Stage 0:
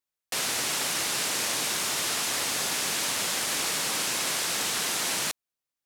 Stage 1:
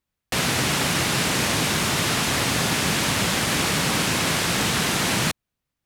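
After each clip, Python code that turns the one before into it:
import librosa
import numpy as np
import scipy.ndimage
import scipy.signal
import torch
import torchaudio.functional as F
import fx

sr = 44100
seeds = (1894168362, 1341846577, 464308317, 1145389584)

y = fx.bass_treble(x, sr, bass_db=15, treble_db=-7)
y = y * librosa.db_to_amplitude(8.0)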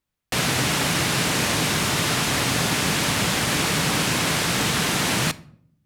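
y = fx.room_shoebox(x, sr, seeds[0], volume_m3=1000.0, walls='furnished', distance_m=0.4)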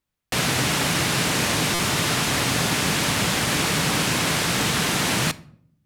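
y = fx.buffer_glitch(x, sr, at_s=(1.74,), block=256, repeats=8)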